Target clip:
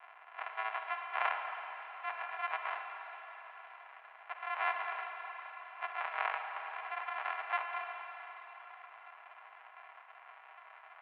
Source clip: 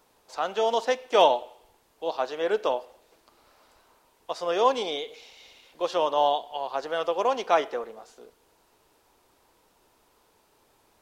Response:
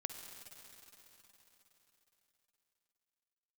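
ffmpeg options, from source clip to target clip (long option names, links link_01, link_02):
-filter_complex "[0:a]aeval=exprs='val(0)+0.5*0.02*sgn(val(0))':channel_layout=same,aresample=11025,acrusher=samples=33:mix=1:aa=0.000001,aresample=44100[link_01];[1:a]atrim=start_sample=2205[link_02];[link_01][link_02]afir=irnorm=-1:irlink=0,highpass=frequency=600:width_type=q:width=0.5412,highpass=frequency=600:width_type=q:width=1.307,lowpass=frequency=2400:width_type=q:width=0.5176,lowpass=frequency=2400:width_type=q:width=0.7071,lowpass=frequency=2400:width_type=q:width=1.932,afreqshift=210,volume=1dB"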